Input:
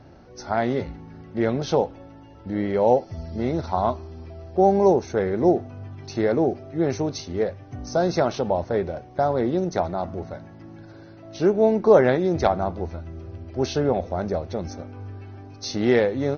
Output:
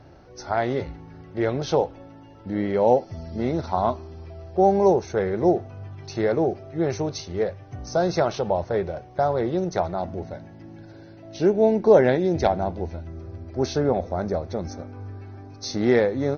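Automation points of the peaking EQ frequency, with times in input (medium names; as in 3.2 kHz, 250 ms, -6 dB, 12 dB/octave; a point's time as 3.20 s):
peaking EQ -10 dB 0.31 oct
220 Hz
from 1.97 s 65 Hz
from 4.14 s 260 Hz
from 9.99 s 1.2 kHz
from 13.07 s 2.9 kHz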